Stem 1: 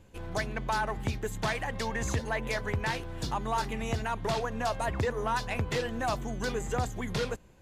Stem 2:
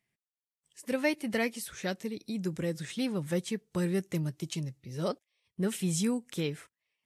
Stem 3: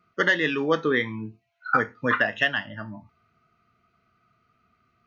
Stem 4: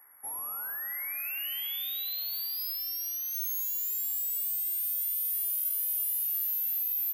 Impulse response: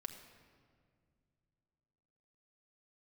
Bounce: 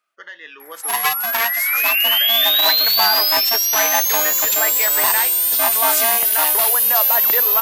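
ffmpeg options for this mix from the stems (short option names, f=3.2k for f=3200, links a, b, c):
-filter_complex "[0:a]adelay=2300,volume=1.5dB[a];[1:a]aeval=exprs='val(0)*sgn(sin(2*PI*460*n/s))':c=same,volume=3dB[b];[2:a]acompressor=threshold=-38dB:ratio=1.5,volume=-9dB[c];[3:a]equalizer=f=4k:w=0.34:g=15,adelay=600,volume=0dB[d];[a][b][c][d]amix=inputs=4:normalize=0,highpass=720,dynaudnorm=f=140:g=7:m=11.5dB"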